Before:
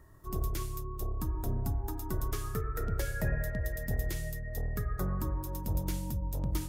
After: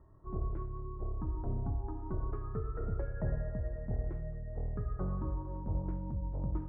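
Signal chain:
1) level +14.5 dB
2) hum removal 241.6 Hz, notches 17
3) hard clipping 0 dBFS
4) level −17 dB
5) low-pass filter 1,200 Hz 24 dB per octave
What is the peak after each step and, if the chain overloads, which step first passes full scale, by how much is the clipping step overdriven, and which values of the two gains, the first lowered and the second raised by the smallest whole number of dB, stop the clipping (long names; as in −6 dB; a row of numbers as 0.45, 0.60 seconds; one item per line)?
−5.5, −5.5, −5.5, −22.5, −23.0 dBFS
no step passes full scale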